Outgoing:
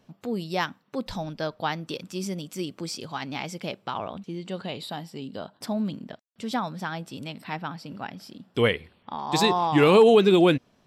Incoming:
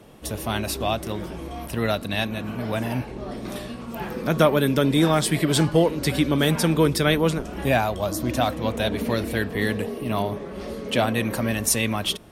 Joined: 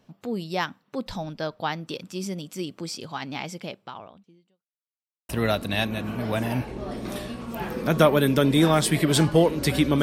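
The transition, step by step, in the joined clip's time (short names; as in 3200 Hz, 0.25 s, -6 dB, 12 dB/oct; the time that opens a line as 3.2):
outgoing
3.52–4.66 fade out quadratic
4.66–5.29 mute
5.29 switch to incoming from 1.69 s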